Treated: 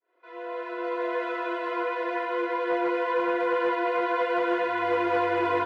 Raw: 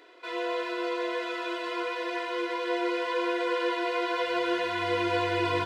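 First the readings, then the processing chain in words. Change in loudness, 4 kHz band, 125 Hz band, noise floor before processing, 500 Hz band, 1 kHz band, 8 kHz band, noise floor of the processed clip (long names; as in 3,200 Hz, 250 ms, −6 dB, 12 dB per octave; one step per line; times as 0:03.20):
+2.5 dB, −7.5 dB, can't be measured, −37 dBFS, +3.0 dB, +4.0 dB, below −10 dB, −46 dBFS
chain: fade in at the beginning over 1.23 s
asymmetric clip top −24 dBFS
three-way crossover with the lows and the highs turned down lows −13 dB, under 310 Hz, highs −18 dB, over 2,100 Hz
level +5 dB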